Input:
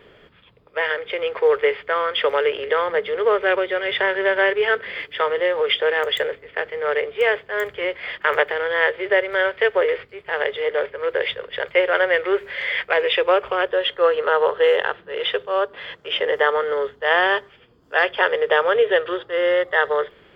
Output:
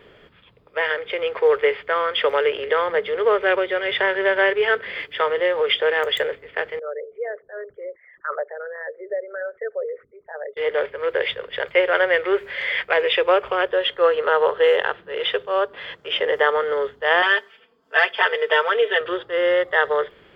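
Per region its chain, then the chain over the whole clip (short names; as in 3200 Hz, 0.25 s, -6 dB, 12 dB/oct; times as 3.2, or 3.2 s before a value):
6.79–10.57 formant sharpening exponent 3 + ladder low-pass 1300 Hz, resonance 55%
17.22–19.01 HPF 990 Hz 6 dB/oct + comb 4.5 ms, depth 99% + mismatched tape noise reduction decoder only
whole clip: dry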